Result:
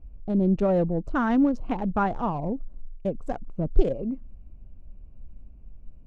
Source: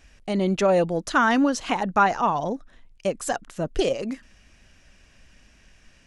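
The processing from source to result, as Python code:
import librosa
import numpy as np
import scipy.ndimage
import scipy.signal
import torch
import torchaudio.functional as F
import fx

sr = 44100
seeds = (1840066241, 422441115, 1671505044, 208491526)

y = fx.wiener(x, sr, points=25)
y = fx.tilt_eq(y, sr, slope=-4.0)
y = y * 10.0 ** (-7.0 / 20.0)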